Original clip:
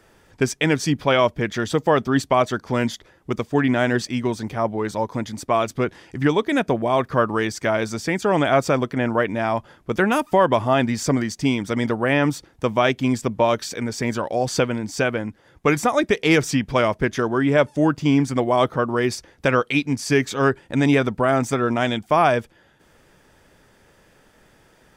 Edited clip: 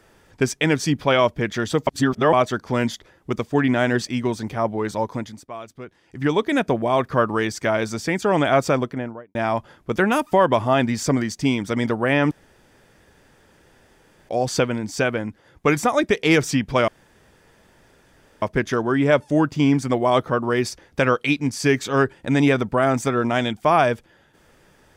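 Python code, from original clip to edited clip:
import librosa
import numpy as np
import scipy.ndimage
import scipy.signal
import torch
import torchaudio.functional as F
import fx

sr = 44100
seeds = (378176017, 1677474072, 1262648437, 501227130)

y = fx.studio_fade_out(x, sr, start_s=8.7, length_s=0.65)
y = fx.edit(y, sr, fx.reverse_span(start_s=1.87, length_s=0.46),
    fx.fade_down_up(start_s=5.1, length_s=1.27, db=-15.0, fade_s=0.35),
    fx.room_tone_fill(start_s=12.31, length_s=1.98),
    fx.insert_room_tone(at_s=16.88, length_s=1.54), tone=tone)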